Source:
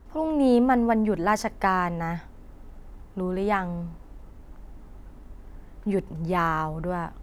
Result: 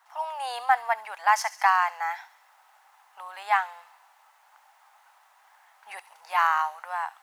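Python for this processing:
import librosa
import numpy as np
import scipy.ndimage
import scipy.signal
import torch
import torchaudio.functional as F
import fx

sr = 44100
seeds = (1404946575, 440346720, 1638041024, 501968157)

p1 = scipy.signal.sosfilt(scipy.signal.ellip(4, 1.0, 60, 790.0, 'highpass', fs=sr, output='sos'), x)
p2 = p1 + fx.echo_wet_highpass(p1, sr, ms=69, feedback_pct=62, hz=3600.0, wet_db=-11.0, dry=0)
y = F.gain(torch.from_numpy(p2), 4.0).numpy()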